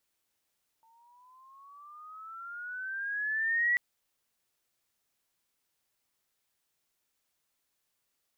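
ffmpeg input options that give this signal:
-f lavfi -i "aevalsrc='pow(10,(-23+38*(t/2.94-1))/20)*sin(2*PI*896*2.94/(13.5*log(2)/12)*(exp(13.5*log(2)/12*t/2.94)-1))':d=2.94:s=44100"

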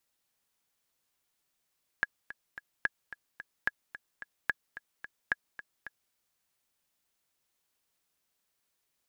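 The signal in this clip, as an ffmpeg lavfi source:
-f lavfi -i "aevalsrc='pow(10,(-13.5-15*gte(mod(t,3*60/219),60/219))/20)*sin(2*PI*1670*mod(t,60/219))*exp(-6.91*mod(t,60/219)/0.03)':d=4.1:s=44100"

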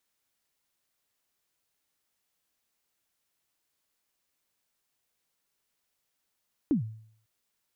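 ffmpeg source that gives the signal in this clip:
-f lavfi -i "aevalsrc='0.112*pow(10,-3*t/0.6)*sin(2*PI*(330*0.117/log(110/330)*(exp(log(110/330)*min(t,0.117)/0.117)-1)+110*max(t-0.117,0)))':d=0.55:s=44100"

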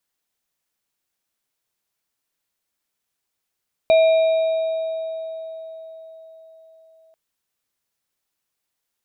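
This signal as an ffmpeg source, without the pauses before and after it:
-f lavfi -i "aevalsrc='0.316*pow(10,-3*t/4.65)*sin(2*PI*647*t)+0.0562*pow(10,-3*t/2.17)*sin(2*PI*2390*t)+0.0316*pow(10,-3*t/3.39)*sin(2*PI*3790*t)':d=3.24:s=44100"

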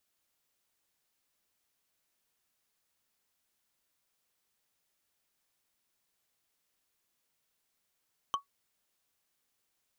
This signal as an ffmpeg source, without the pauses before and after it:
-f lavfi -i "aevalsrc='0.0708*pow(10,-3*t/0.12)*sin(2*PI*1120*t)+0.0335*pow(10,-3*t/0.036)*sin(2*PI*3087.8*t)+0.0158*pow(10,-3*t/0.016)*sin(2*PI*6052.5*t)+0.0075*pow(10,-3*t/0.009)*sin(2*PI*10005*t)+0.00355*pow(10,-3*t/0.005)*sin(2*PI*14940.8*t)':d=0.45:s=44100"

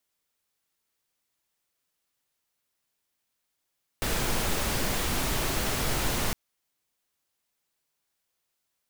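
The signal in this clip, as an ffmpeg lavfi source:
-f lavfi -i "anoisesrc=c=pink:a=0.216:d=2.31:r=44100:seed=1"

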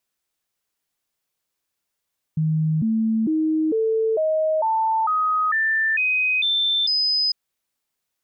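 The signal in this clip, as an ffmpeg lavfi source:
-f lavfi -i "aevalsrc='0.133*clip(min(mod(t,0.45),0.45-mod(t,0.45))/0.005,0,1)*sin(2*PI*157*pow(2,floor(t/0.45)/2)*mod(t,0.45))':d=4.95:s=44100"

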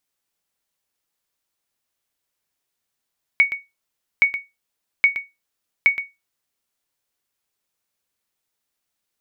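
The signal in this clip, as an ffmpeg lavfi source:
-f lavfi -i "aevalsrc='0.501*(sin(2*PI*2230*mod(t,0.82))*exp(-6.91*mod(t,0.82)/0.21)+0.266*sin(2*PI*2230*max(mod(t,0.82)-0.12,0))*exp(-6.91*max(mod(t,0.82)-0.12,0)/0.21))':d=3.28:s=44100"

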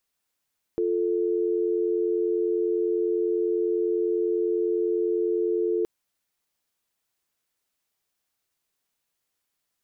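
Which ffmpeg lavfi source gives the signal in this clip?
-f lavfi -i "aevalsrc='0.0596*(sin(2*PI*350*t)+sin(2*PI*440*t))':d=5.07:s=44100"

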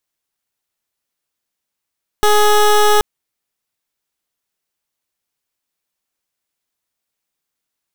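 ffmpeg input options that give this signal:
-f lavfi -i "aevalsrc='0.299*(2*lt(mod(419*t,1),0.18)-1)':d=0.78:s=44100"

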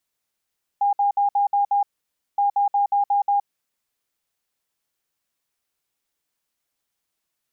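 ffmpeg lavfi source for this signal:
-f lavfi -i "aevalsrc='0.158*sin(2*PI*810*t)*clip(min(mod(mod(t,1.57),0.18),0.12-mod(mod(t,1.57),0.18))/0.005,0,1)*lt(mod(t,1.57),1.08)':d=3.14:s=44100"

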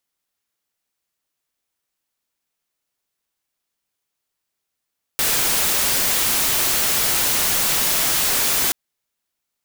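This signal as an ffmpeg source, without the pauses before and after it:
-f lavfi -i "anoisesrc=c=white:a=0.194:d=3.53:r=44100:seed=1"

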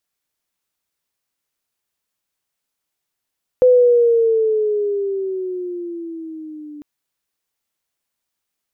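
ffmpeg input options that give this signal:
-f lavfi -i "aevalsrc='pow(10,(-7-25*t/3.2)/20)*sin(2*PI*507*3.2/(-9.5*log(2)/12)*(exp(-9.5*log(2)/12*t/3.2)-1))':d=3.2:s=44100"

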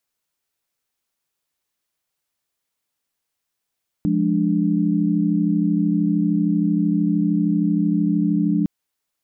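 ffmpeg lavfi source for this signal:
-f lavfi -i "aevalsrc='0.0944*(sin(2*PI*174.61*t)+sin(2*PI*207.65*t)+sin(2*PI*293.66*t))':d=4.61:s=44100"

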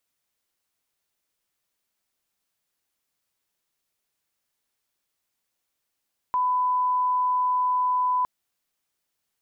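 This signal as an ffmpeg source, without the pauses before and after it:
-f lavfi -i "sine=f=1000:d=1.91:r=44100,volume=-1.94dB"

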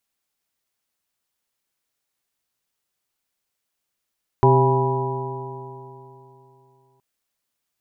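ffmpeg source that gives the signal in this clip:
-f lavfi -i "aevalsrc='0.188*pow(10,-3*t/3.1)*sin(2*PI*129.22*t)+0.0531*pow(10,-3*t/3.1)*sin(2*PI*259.75*t)+0.188*pow(10,-3*t/3.1)*sin(2*PI*392.88*t)+0.0266*pow(10,-3*t/3.1)*sin(2*PI*529.85*t)+0.0473*pow(10,-3*t/3.1)*sin(2*PI*671.85*t)+0.1*pow(10,-3*t/3.1)*sin(2*PI*820*t)+0.15*pow(10,-3*t/3.1)*sin(2*PI*975.32*t)':d=2.57:s=44100"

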